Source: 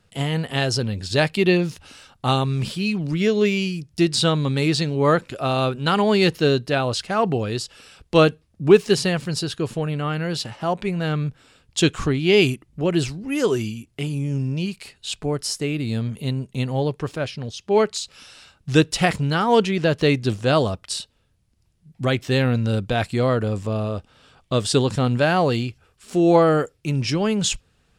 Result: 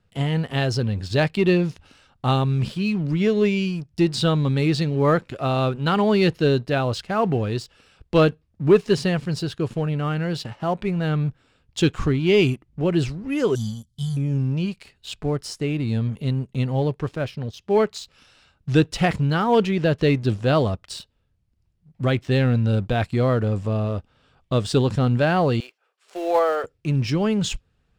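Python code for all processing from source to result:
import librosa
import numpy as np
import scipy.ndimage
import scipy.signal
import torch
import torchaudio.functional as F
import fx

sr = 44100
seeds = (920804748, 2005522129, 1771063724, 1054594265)

y = fx.chain(x, sr, fx.brickwall_bandstop(low_hz=240.0, high_hz=3000.0),
    fx.high_shelf(hz=2900.0, db=9.5), at=(13.55, 14.17))
y = fx.chain(y, sr, fx.block_float(bits=5),
    fx.highpass(hz=490.0, slope=24),
    fx.high_shelf(hz=5800.0, db=-4.5), at=(25.6, 26.64))
y = fx.lowpass(y, sr, hz=3300.0, slope=6)
y = fx.low_shelf(y, sr, hz=150.0, db=5.5)
y = fx.leveller(y, sr, passes=1)
y = y * librosa.db_to_amplitude(-5.0)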